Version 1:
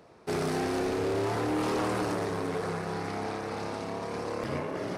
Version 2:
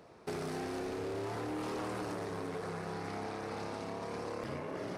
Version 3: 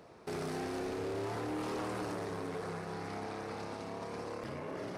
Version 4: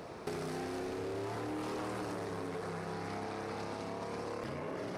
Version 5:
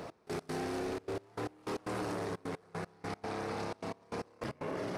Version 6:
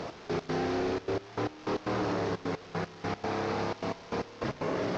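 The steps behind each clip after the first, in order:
downward compressor, threshold −35 dBFS, peak gain reduction 8 dB; level −1.5 dB
brickwall limiter −33.5 dBFS, peak gain reduction 4.5 dB; level +1 dB
downward compressor 12 to 1, threshold −46 dBFS, peak gain reduction 11 dB; level +9.5 dB
gate pattern "x..x.xxxxx.x.." 153 BPM −24 dB; level +2.5 dB
linear delta modulator 32 kbit/s, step −48.5 dBFS; level +6.5 dB

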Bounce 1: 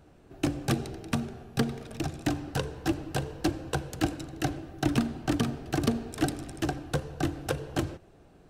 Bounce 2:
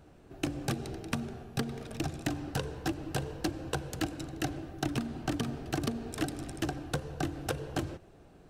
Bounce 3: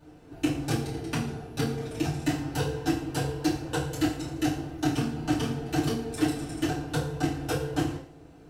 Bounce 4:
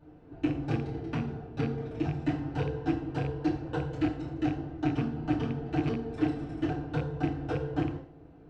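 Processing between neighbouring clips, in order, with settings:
downward compressor 10 to 1, threshold −28 dBFS, peak gain reduction 9 dB
feedback delay network reverb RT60 0.49 s, low-frequency decay 0.95×, high-frequency decay 0.95×, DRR −9.5 dB; level −5.5 dB
loose part that buzzes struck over −26 dBFS, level −23 dBFS; head-to-tape spacing loss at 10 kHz 33 dB; level −1 dB

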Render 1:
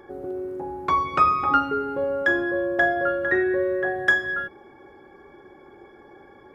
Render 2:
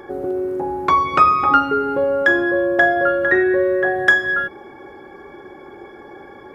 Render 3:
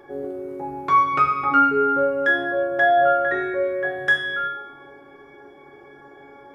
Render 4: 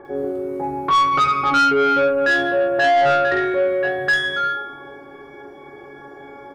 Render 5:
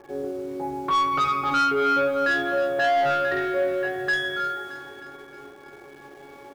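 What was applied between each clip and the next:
low-shelf EQ 150 Hz −4 dB; in parallel at −0.5 dB: downward compressor, threshold −29 dBFS, peak gain reduction 14.5 dB; on the sum: level +4 dB
tuned comb filter 140 Hz, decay 0.79 s, harmonics all, mix 90%; level +6.5 dB
multiband delay without the direct sound lows, highs 50 ms, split 2,100 Hz; soft clipping −18.5 dBFS, distortion −11 dB; level +6.5 dB
in parallel at −10 dB: bit reduction 6 bits; on the sum: repeating echo 311 ms, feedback 57%, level −12.5 dB; level −8.5 dB

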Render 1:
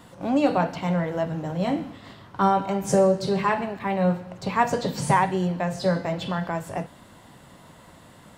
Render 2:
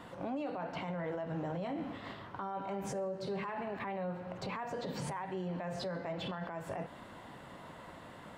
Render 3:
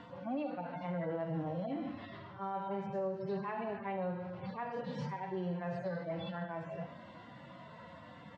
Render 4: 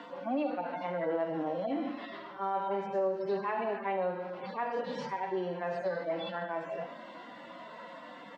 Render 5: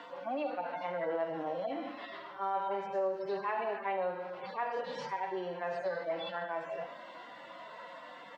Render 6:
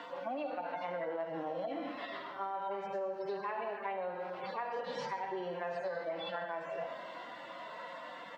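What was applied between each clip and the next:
bass and treble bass −6 dB, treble −12 dB; downward compressor 6 to 1, threshold −31 dBFS, peak gain reduction 15 dB; brickwall limiter −31.5 dBFS, peak gain reduction 12 dB; level +1 dB
harmonic-percussive split with one part muted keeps harmonic; low-pass filter 5,500 Hz 24 dB per octave; repeating echo 73 ms, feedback 59%, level −15 dB; level +1 dB
high-pass filter 250 Hz 24 dB per octave; level +6.5 dB
parametric band 230 Hz −10.5 dB 1.2 octaves
downward compressor, threshold −37 dBFS, peak gain reduction 8.5 dB; on a send at −12 dB: convolution reverb RT60 1.6 s, pre-delay 75 ms; on the sum: level +2 dB

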